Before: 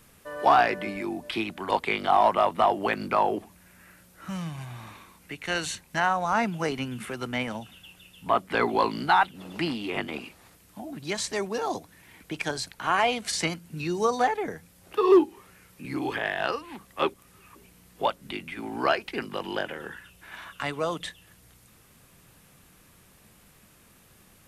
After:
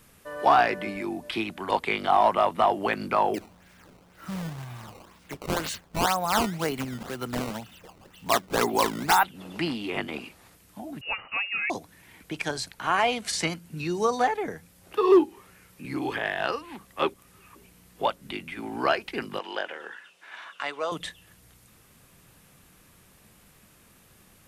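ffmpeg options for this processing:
-filter_complex "[0:a]asettb=1/sr,asplit=3[a][b][c];[a]atrim=end=3.344[d];[b]atrim=start=3.34:end=9.24,asetpts=PTS-STARTPTS,afade=t=in:d=0.004:c=qsin,afade=t=out:st=5.896:d=0.004:c=qsin,acrusher=samples=15:mix=1:aa=0.000001:lfo=1:lforange=24:lforate=2[e];[c]atrim=start=9.236[f];[d][e]acrossfade=d=0.004:c1=hsin:c2=qsin[g];[g][f]acrossfade=d=0.004:c1=qsin:c2=hsin,asettb=1/sr,asplit=3[h][i][j];[h]atrim=end=11.014[k];[i]atrim=start=11.01:end=11.7,asetpts=PTS-STARTPTS,afade=t=in:d=0.004:c=qsin,afade=t=out:st=0.686:d=0.004:c=qsin,lowpass=f=2.6k:t=q:w=0.5098,lowpass=f=2.6k:t=q:w=0.6013,lowpass=f=2.6k:t=q:w=0.9,lowpass=f=2.6k:t=q:w=2.563,afreqshift=-3000[l];[j]atrim=start=11.696[m];[k][l]acrossfade=d=0.004:c1=hsin:c2=qsin[n];[n][m]acrossfade=d=0.004:c1=qsin:c2=hsin,asettb=1/sr,asplit=3[o][p][q];[o]atrim=end=19.394[r];[p]atrim=start=19.39:end=20.92,asetpts=PTS-STARTPTS,afade=t=in:d=0.004:c=qsin,afade=t=out:st=1.526:d=0.004:c=qsin,highpass=470,lowpass=6.5k[s];[q]atrim=start=20.916[t];[r][s]acrossfade=d=0.004:c1=hsin:c2=qsin[u];[u][t]acrossfade=d=0.004:c1=qsin:c2=hsin"

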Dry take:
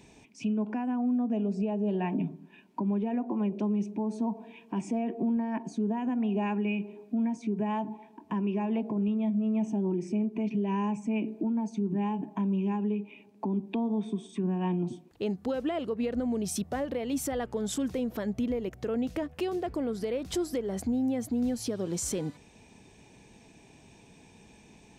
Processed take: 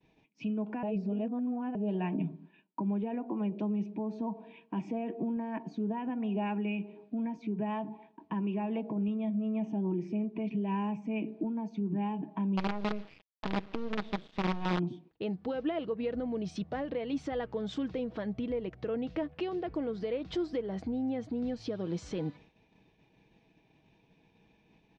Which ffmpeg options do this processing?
-filter_complex "[0:a]asettb=1/sr,asplit=3[a][b][c];[a]atrim=end=12.574[d];[b]atrim=start=12.57:end=14.79,asetpts=PTS-STARTPTS,afade=t=in:d=0.004:c=qsin,afade=t=out:st=2.216:d=0.004:c=qsin,acrusher=bits=5:dc=4:mix=0:aa=0.000001[e];[c]atrim=start=14.786[f];[d][e]acrossfade=d=0.004:c1=hsin:c2=qsin[g];[g][f]acrossfade=d=0.004:c1=qsin:c2=hsin,asplit=3[h][i][j];[h]atrim=end=0.832[k];[i]atrim=start=0.828:end=1.752,asetpts=PTS-STARTPTS,areverse[l];[j]atrim=start=1.748[m];[k][l]acrossfade=d=0.004:c1=hsin:c2=hsin[n];[n][m]acrossfade=d=0.004:c1=hsin:c2=hsin,agate=range=-33dB:threshold=-48dB:ratio=3:detection=peak,lowpass=f=4.2k:w=0.5412,lowpass=f=4.2k:w=1.3066,aecho=1:1:6.3:0.31,volume=-3dB"

